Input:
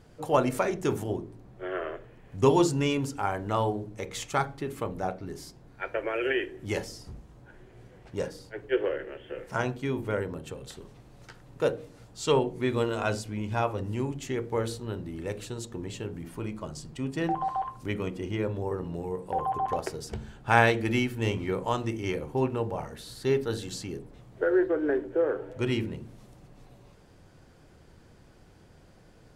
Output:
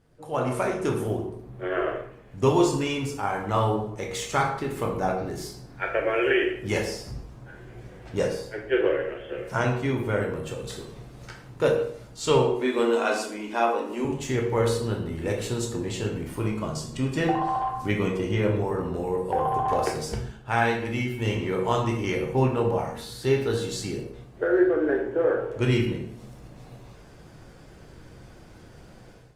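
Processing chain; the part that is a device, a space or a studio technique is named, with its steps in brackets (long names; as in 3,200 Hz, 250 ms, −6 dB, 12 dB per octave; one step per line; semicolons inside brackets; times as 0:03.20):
0:12.51–0:14.05: Butterworth high-pass 230 Hz 72 dB per octave
speakerphone in a meeting room (convolution reverb RT60 0.70 s, pre-delay 12 ms, DRR 1 dB; automatic gain control gain up to 13.5 dB; level −8 dB; Opus 32 kbit/s 48,000 Hz)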